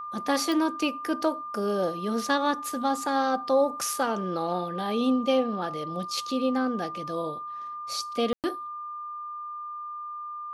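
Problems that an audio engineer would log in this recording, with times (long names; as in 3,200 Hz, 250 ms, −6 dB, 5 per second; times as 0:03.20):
whistle 1,200 Hz −34 dBFS
0:00.52: click
0:08.33–0:08.44: drop-out 108 ms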